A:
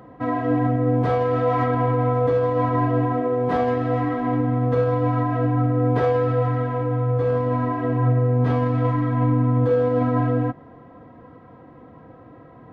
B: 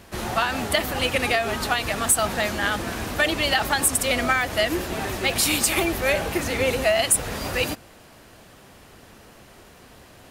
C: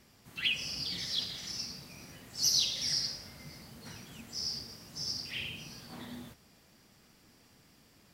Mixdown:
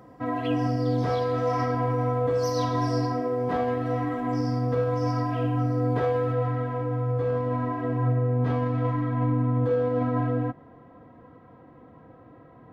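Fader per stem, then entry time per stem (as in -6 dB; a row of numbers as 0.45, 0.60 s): -5.0 dB, off, -12.5 dB; 0.00 s, off, 0.00 s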